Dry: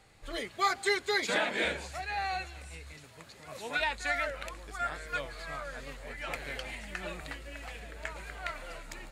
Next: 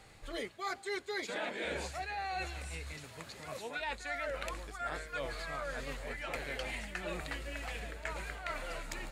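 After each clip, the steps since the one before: dynamic EQ 420 Hz, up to +4 dB, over -45 dBFS, Q 0.84; reverse; compressor 8:1, threshold -39 dBFS, peak gain reduction 17.5 dB; reverse; gain +3.5 dB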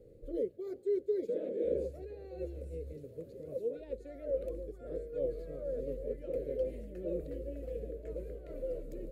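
EQ curve 210 Hz 0 dB, 520 Hz +12 dB, 810 Hz -30 dB, 8400 Hz -23 dB, 13000 Hz -10 dB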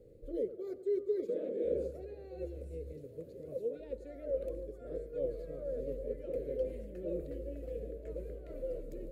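tape echo 96 ms, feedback 72%, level -13 dB, low-pass 1100 Hz; gain -1 dB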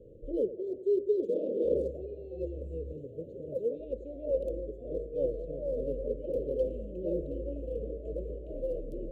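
Wiener smoothing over 9 samples; Chebyshev band-stop 640–2800 Hz, order 4; gain +6 dB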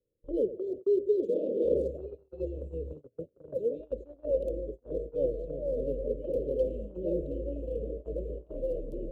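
gate -39 dBFS, range -33 dB; gain +1.5 dB

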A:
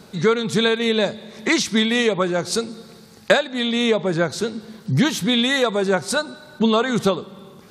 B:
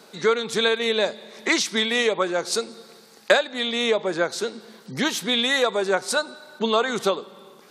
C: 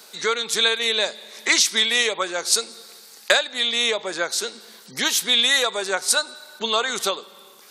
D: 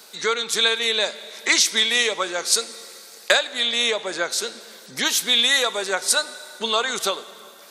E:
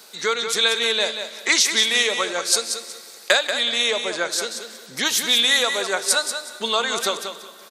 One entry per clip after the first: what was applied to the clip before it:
HPF 360 Hz 12 dB/oct; gain -1 dB
tilt +3.5 dB/oct; gain -1 dB
plate-style reverb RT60 3.6 s, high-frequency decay 0.85×, DRR 17 dB
feedback echo 0.185 s, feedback 25%, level -8 dB

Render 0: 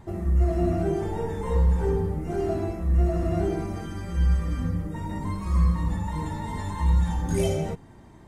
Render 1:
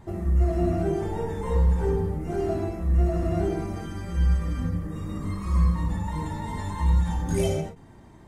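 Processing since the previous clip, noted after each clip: spectral repair 4.8–5.48, 600–1900 Hz both; ending taper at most 130 dB/s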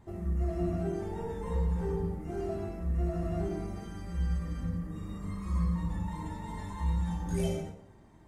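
plate-style reverb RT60 0.78 s, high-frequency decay 0.7×, DRR 5.5 dB; gain -9 dB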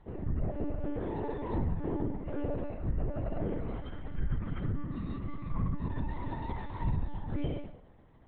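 vocal rider within 3 dB 0.5 s; monotone LPC vocoder at 8 kHz 290 Hz; treble ducked by the level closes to 2800 Hz, closed at -27 dBFS

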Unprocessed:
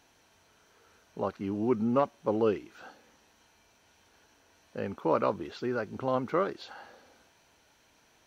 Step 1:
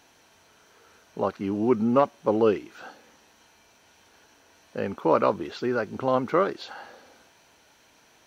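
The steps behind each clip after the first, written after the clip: low shelf 95 Hz -7.5 dB; gain +6 dB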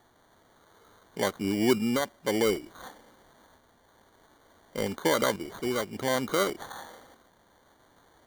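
limiter -13 dBFS, peak gain reduction 6.5 dB; tremolo saw up 0.56 Hz, depth 40%; sample-and-hold 17×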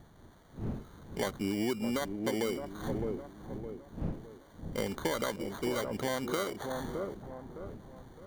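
wind noise 210 Hz -44 dBFS; dark delay 0.612 s, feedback 38%, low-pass 840 Hz, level -8 dB; compressor 10:1, threshold -27 dBFS, peak gain reduction 10.5 dB; gain -1 dB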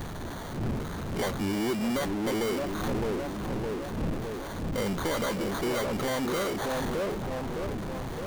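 flange 0.68 Hz, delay 0.3 ms, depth 7.2 ms, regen +89%; power-law curve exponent 0.35; mismatched tape noise reduction encoder only

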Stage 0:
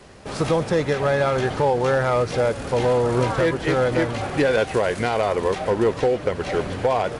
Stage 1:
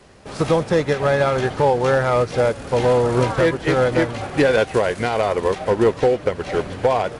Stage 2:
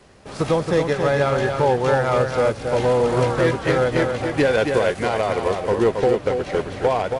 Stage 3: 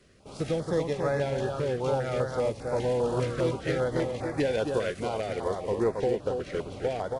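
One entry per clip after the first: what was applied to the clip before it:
upward expander 1.5:1, over -29 dBFS; gain +4 dB
echo 0.274 s -5.5 dB; gain -2 dB
stepped notch 5 Hz 860–3000 Hz; gain -8 dB

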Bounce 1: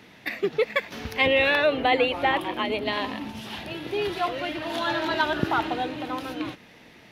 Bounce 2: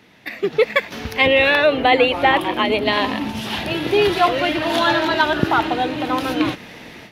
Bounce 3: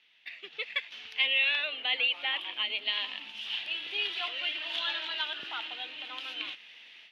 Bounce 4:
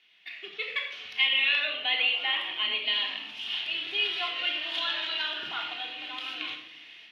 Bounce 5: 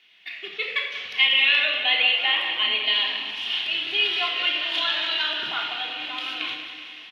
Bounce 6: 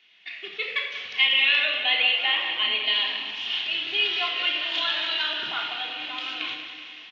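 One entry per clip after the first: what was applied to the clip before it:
AGC gain up to 14.5 dB; gain -1 dB
band-pass 3000 Hz, Q 3.7; gain -4 dB
shoebox room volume 2000 m³, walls furnished, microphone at 3.3 m
feedback echo 0.189 s, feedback 59%, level -10 dB; gain +5.5 dB
downsampling 16000 Hz; gain -1.5 dB

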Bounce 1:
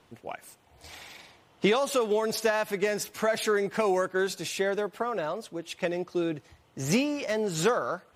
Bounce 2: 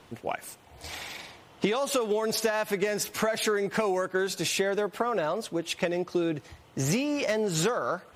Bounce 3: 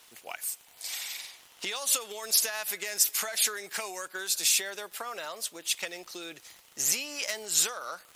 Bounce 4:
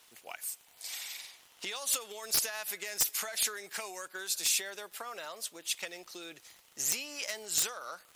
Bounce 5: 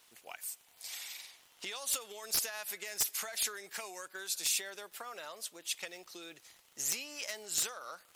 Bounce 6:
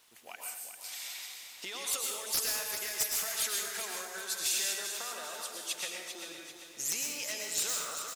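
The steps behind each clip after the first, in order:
compressor 6:1, threshold -31 dBFS, peak gain reduction 11.5 dB; gain +7 dB
differentiator; crackle 41/s -47 dBFS; gain +8.5 dB
wrapped overs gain 12.5 dB; gain -4.5 dB
wow and flutter 26 cents; gain -3 dB
on a send: feedback echo 0.393 s, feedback 44%, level -8.5 dB; on the sum: plate-style reverb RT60 0.79 s, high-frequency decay 1×, pre-delay 95 ms, DRR 0.5 dB

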